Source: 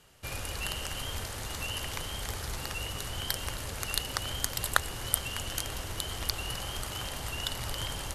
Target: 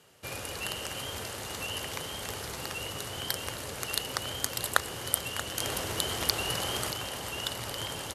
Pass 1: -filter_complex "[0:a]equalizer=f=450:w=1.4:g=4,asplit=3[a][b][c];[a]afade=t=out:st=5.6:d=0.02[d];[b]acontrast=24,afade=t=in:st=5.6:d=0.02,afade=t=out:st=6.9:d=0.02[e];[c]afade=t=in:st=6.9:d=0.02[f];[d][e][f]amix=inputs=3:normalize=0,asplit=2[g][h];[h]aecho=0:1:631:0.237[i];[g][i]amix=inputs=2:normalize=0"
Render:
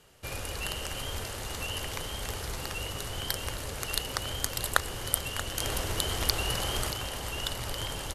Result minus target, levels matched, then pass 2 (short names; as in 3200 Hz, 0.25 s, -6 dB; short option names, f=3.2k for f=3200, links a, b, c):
125 Hz band +4.0 dB
-filter_complex "[0:a]highpass=110,equalizer=f=450:w=1.4:g=4,asplit=3[a][b][c];[a]afade=t=out:st=5.6:d=0.02[d];[b]acontrast=24,afade=t=in:st=5.6:d=0.02,afade=t=out:st=6.9:d=0.02[e];[c]afade=t=in:st=6.9:d=0.02[f];[d][e][f]amix=inputs=3:normalize=0,asplit=2[g][h];[h]aecho=0:1:631:0.237[i];[g][i]amix=inputs=2:normalize=0"